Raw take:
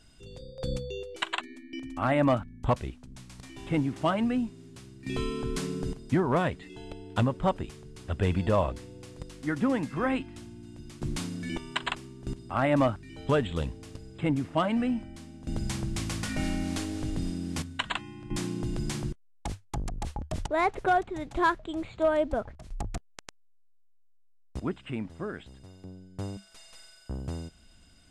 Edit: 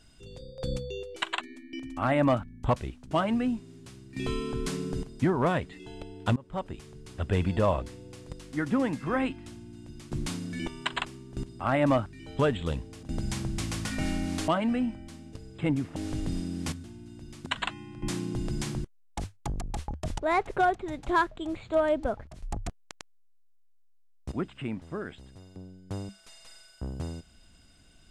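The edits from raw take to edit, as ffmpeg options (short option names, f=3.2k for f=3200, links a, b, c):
-filter_complex "[0:a]asplit=9[a][b][c][d][e][f][g][h][i];[a]atrim=end=3.112[j];[b]atrim=start=4.008:end=7.26,asetpts=PTS-STARTPTS,afade=t=out:st=3.248:d=0.004:c=hsin:silence=0.0630957[k];[c]atrim=start=7.26:end=13.932,asetpts=PTS-STARTPTS,afade=t=in:d=0.59:silence=0.0630957[l];[d]atrim=start=15.408:end=16.862[m];[e]atrim=start=14.558:end=15.412[n];[f]atrim=start=13.928:end=14.562[o];[g]atrim=start=16.858:end=17.742[p];[h]atrim=start=10.408:end=11.032[q];[i]atrim=start=17.738[r];[k][l]concat=n=2:v=0:a=1[s];[j][s]acrossfade=d=0.004:c1=hsin:c2=hsin[t];[t][m]acrossfade=d=0.004:c1=hsin:c2=hsin[u];[u][n]acrossfade=d=0.004:c1=hsin:c2=hsin[v];[v][o]acrossfade=d=0.004:c1=hsin:c2=hsin[w];[w][p]acrossfade=d=0.004:c1=hsin:c2=hsin[x];[x][q]acrossfade=d=0.004:c1=hsin:c2=hsin[y];[y][r]acrossfade=d=0.004:c1=hsin:c2=hsin"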